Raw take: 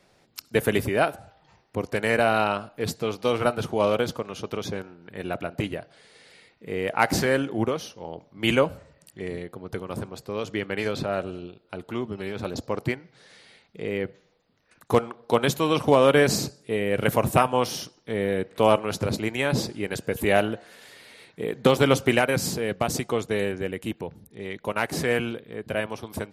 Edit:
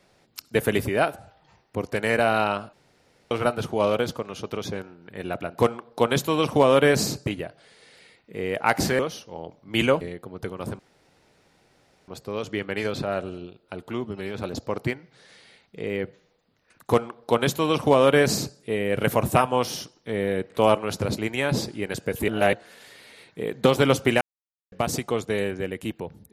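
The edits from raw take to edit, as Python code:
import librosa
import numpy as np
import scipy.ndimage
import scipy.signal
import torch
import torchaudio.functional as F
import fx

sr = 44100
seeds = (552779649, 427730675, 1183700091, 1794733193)

y = fx.edit(x, sr, fx.room_tone_fill(start_s=2.73, length_s=0.58),
    fx.cut(start_s=7.32, length_s=0.36),
    fx.cut(start_s=8.7, length_s=0.61),
    fx.insert_room_tone(at_s=10.09, length_s=1.29),
    fx.duplicate(start_s=14.91, length_s=1.67, to_s=5.59),
    fx.reverse_span(start_s=20.29, length_s=0.25),
    fx.silence(start_s=22.22, length_s=0.51), tone=tone)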